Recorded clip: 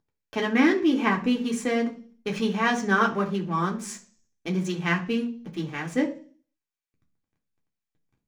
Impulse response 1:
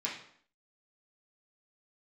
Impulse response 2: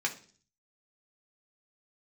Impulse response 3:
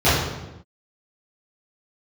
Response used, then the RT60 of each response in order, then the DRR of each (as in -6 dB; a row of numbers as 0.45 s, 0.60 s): 2; 0.60 s, 0.45 s, no single decay rate; -6.0 dB, -0.5 dB, -14.5 dB